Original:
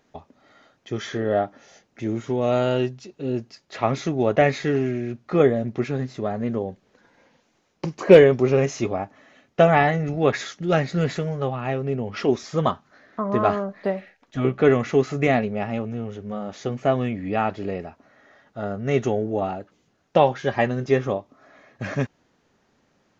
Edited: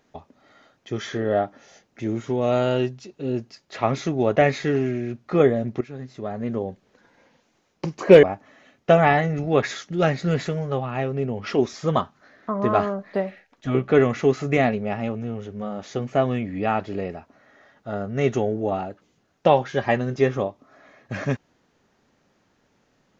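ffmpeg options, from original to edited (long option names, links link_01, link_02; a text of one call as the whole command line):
ffmpeg -i in.wav -filter_complex "[0:a]asplit=3[link_01][link_02][link_03];[link_01]atrim=end=5.81,asetpts=PTS-STARTPTS,afade=type=out:start_time=5.806:duration=0.004:curve=hsin:silence=0.177828[link_04];[link_02]atrim=start=5.81:end=8.232,asetpts=PTS-STARTPTS,afade=type=in:duration=0.85:silence=0.177828[link_05];[link_03]atrim=start=8.928[link_06];[link_04][link_05]concat=n=2:v=0:a=1[link_07];[link_07][link_06]acrossfade=duration=0.004:curve1=hsin:curve2=hsin" out.wav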